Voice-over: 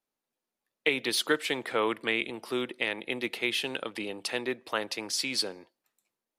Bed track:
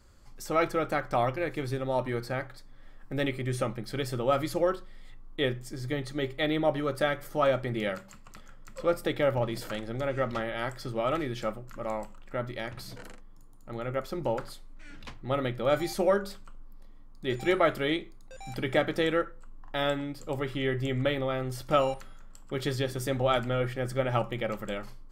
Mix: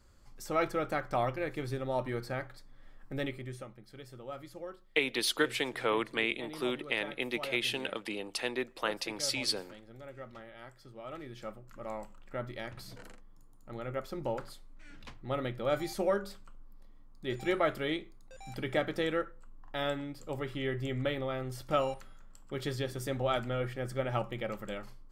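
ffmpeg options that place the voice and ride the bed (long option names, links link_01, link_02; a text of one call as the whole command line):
ffmpeg -i stem1.wav -i stem2.wav -filter_complex "[0:a]adelay=4100,volume=-2.5dB[link_01];[1:a]volume=8dB,afade=type=out:start_time=3.07:duration=0.59:silence=0.223872,afade=type=in:start_time=11:duration=1.22:silence=0.251189[link_02];[link_01][link_02]amix=inputs=2:normalize=0" out.wav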